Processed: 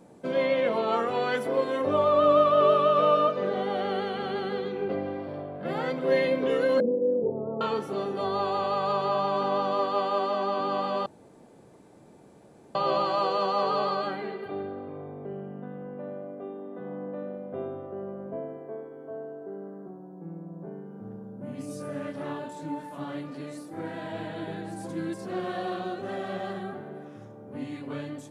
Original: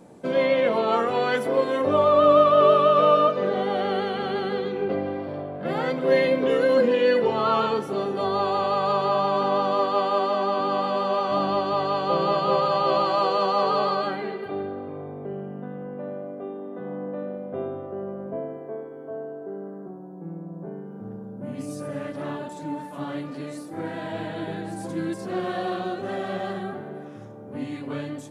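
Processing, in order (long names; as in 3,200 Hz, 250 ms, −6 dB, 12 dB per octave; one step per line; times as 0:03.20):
0:06.80–0:07.61: inverse Chebyshev low-pass filter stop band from 2,500 Hz, stop band 70 dB
0:11.06–0:12.75: fill with room tone
0:21.67–0:22.95: double-tracking delay 25 ms −6 dB
level −4 dB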